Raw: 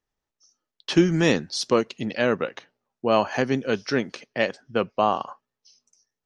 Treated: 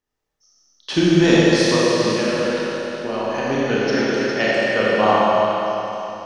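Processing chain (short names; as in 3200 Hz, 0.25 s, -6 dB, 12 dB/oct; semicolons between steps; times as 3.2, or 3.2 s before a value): 1.75–3.46 compressor, threshold -25 dBFS, peak gain reduction 10.5 dB; 4.25–5.08 high shelf 4400 Hz +7.5 dB; delay with a stepping band-pass 0.136 s, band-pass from 570 Hz, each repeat 1.4 oct, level -1.5 dB; Schroeder reverb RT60 3.3 s, combs from 25 ms, DRR -7 dB; gain -1 dB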